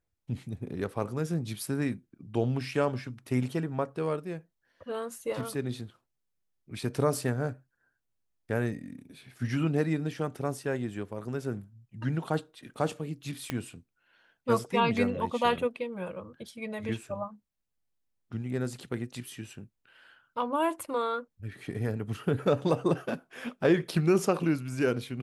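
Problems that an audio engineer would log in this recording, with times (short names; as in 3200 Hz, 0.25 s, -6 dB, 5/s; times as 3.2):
13.5 pop -16 dBFS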